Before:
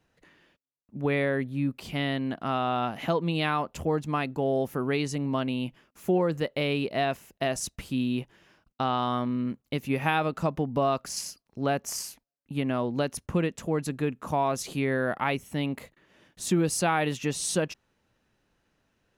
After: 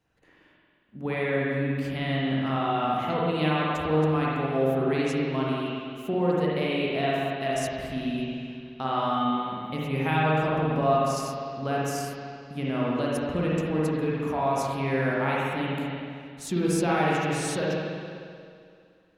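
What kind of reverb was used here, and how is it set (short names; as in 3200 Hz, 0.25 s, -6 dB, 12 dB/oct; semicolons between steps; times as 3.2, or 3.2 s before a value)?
spring tank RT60 2.3 s, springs 45/58 ms, chirp 40 ms, DRR -6 dB; gain -5 dB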